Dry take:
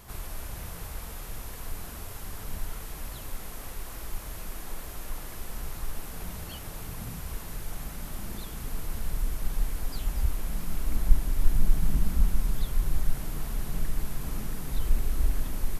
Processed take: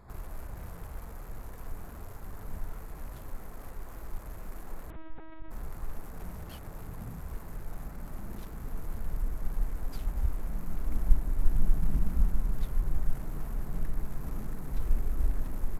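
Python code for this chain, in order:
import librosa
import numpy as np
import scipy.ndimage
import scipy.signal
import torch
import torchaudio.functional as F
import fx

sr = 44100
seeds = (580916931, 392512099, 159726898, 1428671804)

y = fx.wiener(x, sr, points=15)
y = fx.lpc_vocoder(y, sr, seeds[0], excitation='pitch_kept', order=8, at=(4.9, 5.51))
y = y * 10.0 ** (-2.5 / 20.0)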